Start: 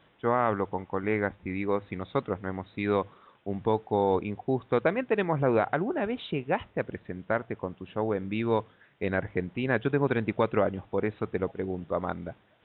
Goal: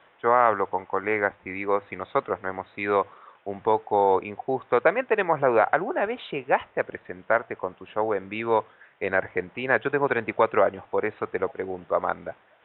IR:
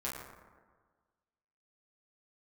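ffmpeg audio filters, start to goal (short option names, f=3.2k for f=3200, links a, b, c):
-filter_complex "[0:a]acrossover=split=450 3000:gain=0.158 1 0.0794[a][b][c];[a][b][c]amix=inputs=3:normalize=0,volume=8dB"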